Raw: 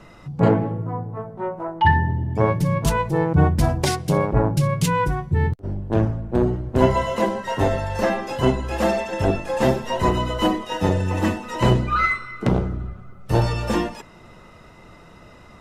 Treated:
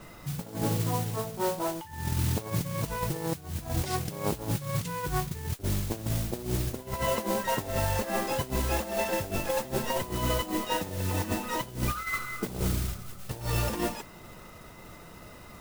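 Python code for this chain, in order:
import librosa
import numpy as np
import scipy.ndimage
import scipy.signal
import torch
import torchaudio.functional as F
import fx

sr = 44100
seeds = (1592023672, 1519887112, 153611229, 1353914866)

y = fx.over_compress(x, sr, threshold_db=-24.0, ratio=-0.5)
y = fx.mod_noise(y, sr, seeds[0], snr_db=10)
y = y * librosa.db_to_amplitude(-6.0)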